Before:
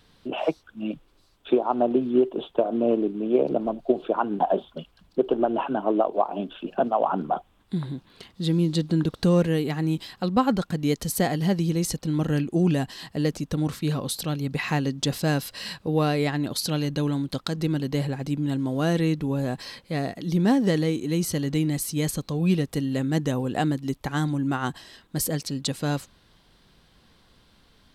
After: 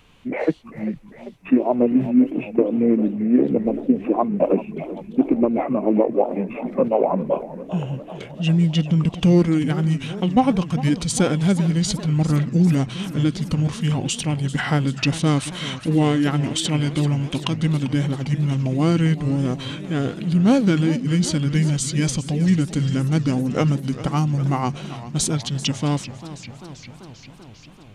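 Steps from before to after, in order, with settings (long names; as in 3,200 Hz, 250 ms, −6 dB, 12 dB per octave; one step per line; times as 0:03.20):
formants moved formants −5 semitones
feedback echo with a swinging delay time 394 ms, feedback 71%, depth 189 cents, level −15 dB
level +5 dB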